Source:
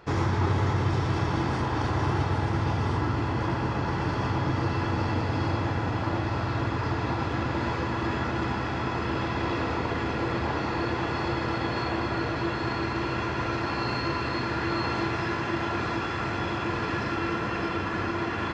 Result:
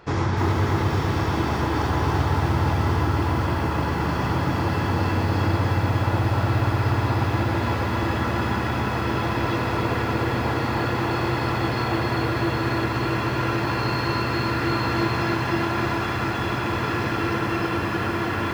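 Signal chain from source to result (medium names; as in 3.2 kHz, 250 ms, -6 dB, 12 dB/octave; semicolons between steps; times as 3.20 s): bit-crushed delay 303 ms, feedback 55%, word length 8-bit, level -3.5 dB; trim +2.5 dB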